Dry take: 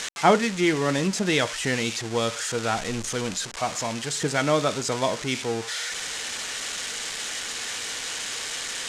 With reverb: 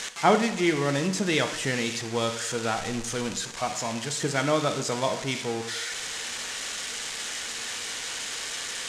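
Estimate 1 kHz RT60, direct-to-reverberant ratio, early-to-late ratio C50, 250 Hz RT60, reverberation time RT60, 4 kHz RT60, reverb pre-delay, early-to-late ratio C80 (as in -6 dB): 1.0 s, 8.0 dB, 11.0 dB, 1.0 s, 1.1 s, 0.95 s, 5 ms, 13.0 dB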